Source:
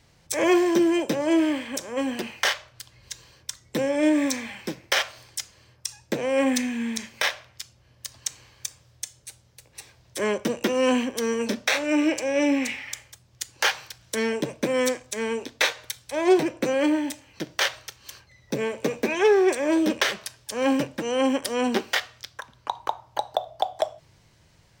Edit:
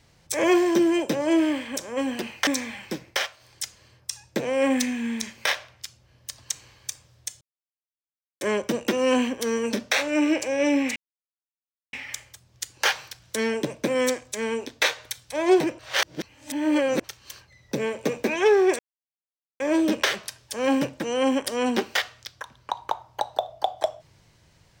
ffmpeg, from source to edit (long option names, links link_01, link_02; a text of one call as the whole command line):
ffmpeg -i in.wav -filter_complex "[0:a]asplit=10[link_01][link_02][link_03][link_04][link_05][link_06][link_07][link_08][link_09][link_10];[link_01]atrim=end=2.472[link_11];[link_02]atrim=start=4.228:end=5.07,asetpts=PTS-STARTPTS,afade=type=out:start_time=0.602:duration=0.24:silence=0.334965[link_12];[link_03]atrim=start=5.07:end=5.15,asetpts=PTS-STARTPTS,volume=-9.5dB[link_13];[link_04]atrim=start=5.15:end=9.17,asetpts=PTS-STARTPTS,afade=type=in:duration=0.24:silence=0.334965,afade=type=out:start_time=4.016:duration=0.004:curve=hsin[link_14];[link_05]atrim=start=9.17:end=10.17,asetpts=PTS-STARTPTS,volume=0[link_15];[link_06]atrim=start=10.17:end=12.72,asetpts=PTS-STARTPTS,afade=type=in:duration=0.004:curve=hsin,afade=type=out:start_time=2.546:duration=0.004:curve=hsin,apad=pad_dur=0.97[link_16];[link_07]atrim=start=12.72:end=16.582,asetpts=PTS-STARTPTS,afade=type=in:duration=0.004:curve=hsin[link_17];[link_08]atrim=start=16.578:end=17.832,asetpts=PTS-STARTPTS,areverse[link_18];[link_09]atrim=start=17.828:end=19.58,asetpts=PTS-STARTPTS,afade=type=out:start_time=1.748:duration=0.004:curve=hsin,apad=pad_dur=0.81[link_19];[link_10]atrim=start=19.58,asetpts=PTS-STARTPTS,afade=type=in:duration=0.004:curve=hsin[link_20];[link_12][link_13][link_14][link_15][link_16][link_17]concat=n=6:v=0:a=1[link_21];[link_11][link_21]acrossfade=duration=0.004:curve1=hsin:curve2=hsin[link_22];[link_22][link_18]acrossfade=duration=0.004:curve1=hsin:curve2=hsin[link_23];[link_19][link_20]concat=n=2:v=0:a=1[link_24];[link_23][link_24]acrossfade=duration=0.004:curve1=hsin:curve2=hsin" out.wav